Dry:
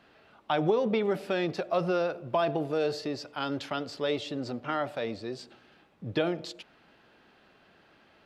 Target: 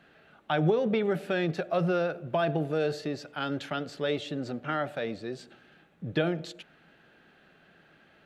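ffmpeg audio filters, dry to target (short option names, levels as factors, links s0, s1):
-af "equalizer=f=100:t=o:w=0.33:g=-3,equalizer=f=160:t=o:w=0.33:g=8,equalizer=f=1000:t=o:w=0.33:g=-7,equalizer=f=1600:t=o:w=0.33:g=5,equalizer=f=5000:t=o:w=0.33:g=-7"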